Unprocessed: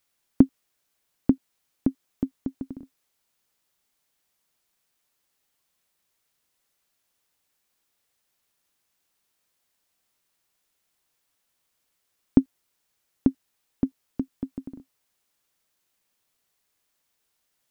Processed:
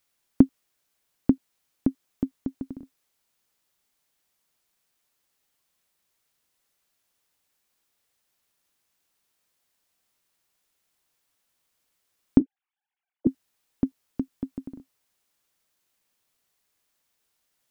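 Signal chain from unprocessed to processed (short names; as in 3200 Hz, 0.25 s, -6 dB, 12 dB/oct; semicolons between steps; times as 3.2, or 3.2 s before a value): 12.39–13.27 sine-wave speech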